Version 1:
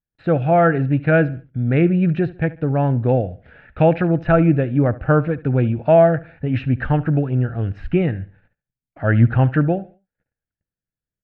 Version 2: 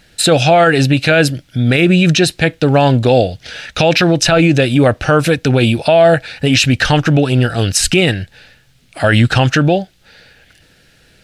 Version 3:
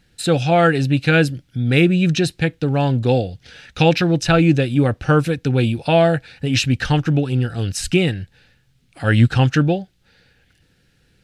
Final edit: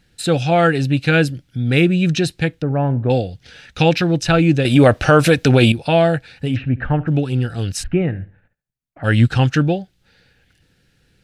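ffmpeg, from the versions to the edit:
-filter_complex "[0:a]asplit=3[a][b][c];[2:a]asplit=5[d][e][f][g][h];[d]atrim=end=2.622[i];[a]atrim=start=2.618:end=3.102[j];[e]atrim=start=3.098:end=4.652[k];[1:a]atrim=start=4.648:end=5.722[l];[f]atrim=start=5.718:end=6.57[m];[b]atrim=start=6.51:end=7.13[n];[g]atrim=start=7.07:end=7.84[o];[c]atrim=start=7.82:end=9.05[p];[h]atrim=start=9.03[q];[i][j]acrossfade=d=0.004:c1=hsin:c2=hsin[r];[r][k]acrossfade=d=0.004:c1=hsin:c2=hsin[s];[s][l]acrossfade=d=0.004:c1=hsin:c2=hsin[t];[t][m]acrossfade=d=0.004:c1=hsin:c2=hsin[u];[u][n]acrossfade=d=0.06:c1=tri:c2=tri[v];[v][o]acrossfade=d=0.06:c1=tri:c2=tri[w];[w][p]acrossfade=d=0.02:c1=tri:c2=tri[x];[x][q]acrossfade=d=0.02:c1=tri:c2=tri"

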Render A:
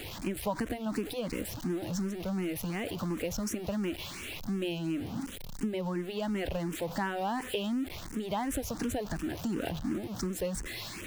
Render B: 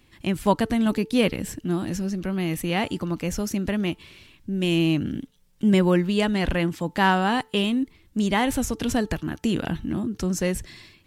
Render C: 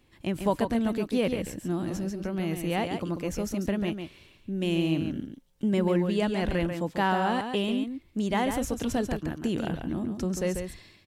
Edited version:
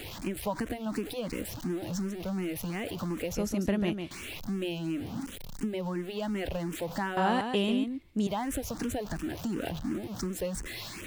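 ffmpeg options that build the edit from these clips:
-filter_complex "[2:a]asplit=2[a][b];[0:a]asplit=3[c][d][e];[c]atrim=end=3.352[f];[a]atrim=start=3.348:end=4.112[g];[d]atrim=start=4.108:end=7.172[h];[b]atrim=start=7.168:end=8.272[i];[e]atrim=start=8.268[j];[f][g]acrossfade=d=0.004:c1=hsin:c2=hsin[k];[k][h]acrossfade=d=0.004:c1=hsin:c2=hsin[l];[l][i]acrossfade=d=0.004:c1=hsin:c2=hsin[m];[m][j]acrossfade=d=0.004:c1=hsin:c2=hsin"

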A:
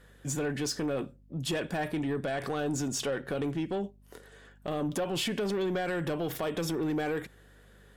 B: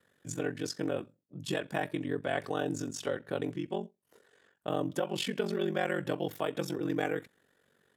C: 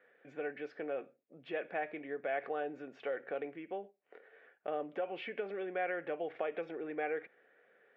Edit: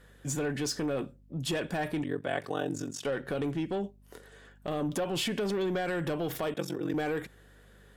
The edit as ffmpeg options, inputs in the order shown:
-filter_complex "[1:a]asplit=2[a][b];[0:a]asplit=3[c][d][e];[c]atrim=end=2.042[f];[a]atrim=start=2.038:end=3.052[g];[d]atrim=start=3.048:end=6.542[h];[b]atrim=start=6.538:end=6.942[i];[e]atrim=start=6.938[j];[f][g]acrossfade=d=0.004:c1=hsin:c2=hsin[k];[k][h]acrossfade=d=0.004:c1=hsin:c2=hsin[l];[l][i]acrossfade=d=0.004:c1=hsin:c2=hsin[m];[m][j]acrossfade=d=0.004:c1=hsin:c2=hsin"

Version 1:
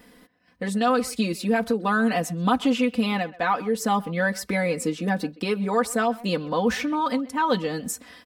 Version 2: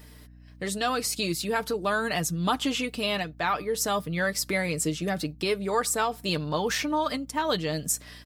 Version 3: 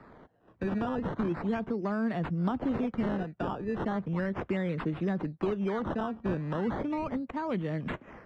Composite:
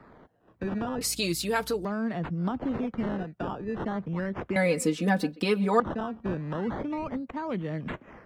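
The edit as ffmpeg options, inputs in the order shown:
-filter_complex "[2:a]asplit=3[a][b][c];[a]atrim=end=1.012[d];[1:a]atrim=start=1.008:end=1.852[e];[b]atrim=start=1.848:end=4.562[f];[0:a]atrim=start=4.558:end=5.802[g];[c]atrim=start=5.798[h];[d][e]acrossfade=d=0.004:c1=hsin:c2=hsin[i];[i][f]acrossfade=d=0.004:c1=hsin:c2=hsin[j];[j][g]acrossfade=d=0.004:c1=hsin:c2=hsin[k];[k][h]acrossfade=d=0.004:c1=hsin:c2=hsin"

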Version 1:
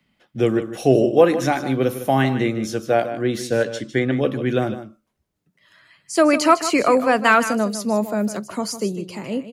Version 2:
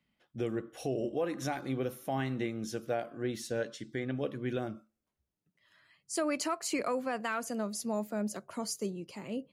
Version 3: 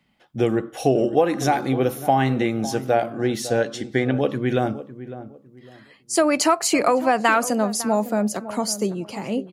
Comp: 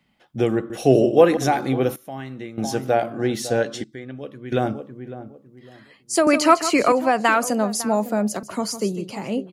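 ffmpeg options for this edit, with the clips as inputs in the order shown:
-filter_complex "[0:a]asplit=3[a][b][c];[1:a]asplit=2[d][e];[2:a]asplit=6[f][g][h][i][j][k];[f]atrim=end=0.702[l];[a]atrim=start=0.698:end=1.372[m];[g]atrim=start=1.368:end=1.962[n];[d]atrim=start=1.958:end=2.582[o];[h]atrim=start=2.578:end=3.842[p];[e]atrim=start=3.838:end=4.522[q];[i]atrim=start=4.518:end=6.272[r];[b]atrim=start=6.268:end=6.922[s];[j]atrim=start=6.918:end=8.432[t];[c]atrim=start=8.428:end=9.102[u];[k]atrim=start=9.098[v];[l][m]acrossfade=d=0.004:c1=hsin:c2=hsin[w];[w][n]acrossfade=d=0.004:c1=hsin:c2=hsin[x];[x][o]acrossfade=d=0.004:c1=hsin:c2=hsin[y];[y][p]acrossfade=d=0.004:c1=hsin:c2=hsin[z];[z][q]acrossfade=d=0.004:c1=hsin:c2=hsin[aa];[aa][r]acrossfade=d=0.004:c1=hsin:c2=hsin[ab];[ab][s]acrossfade=d=0.004:c1=hsin:c2=hsin[ac];[ac][t]acrossfade=d=0.004:c1=hsin:c2=hsin[ad];[ad][u]acrossfade=d=0.004:c1=hsin:c2=hsin[ae];[ae][v]acrossfade=d=0.004:c1=hsin:c2=hsin"

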